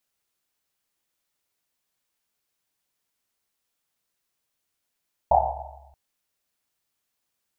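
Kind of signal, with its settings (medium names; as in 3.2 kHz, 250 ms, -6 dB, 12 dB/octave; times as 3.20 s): Risset drum length 0.63 s, pitch 69 Hz, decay 1.60 s, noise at 760 Hz, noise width 270 Hz, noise 80%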